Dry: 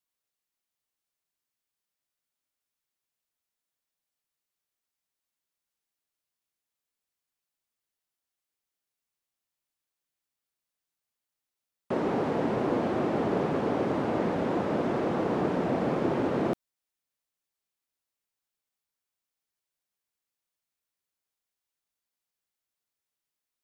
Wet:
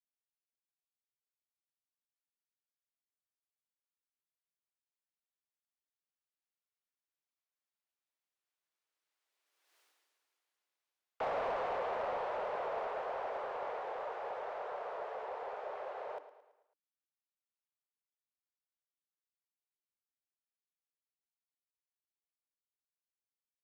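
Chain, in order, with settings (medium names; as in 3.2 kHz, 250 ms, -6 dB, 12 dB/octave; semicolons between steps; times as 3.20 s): Doppler pass-by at 9.79 s, 26 m/s, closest 2.6 m; frequency shift +280 Hz; feedback delay 110 ms, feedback 49%, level -14 dB; overdrive pedal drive 17 dB, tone 2.6 kHz, clips at -39 dBFS; trim +11.5 dB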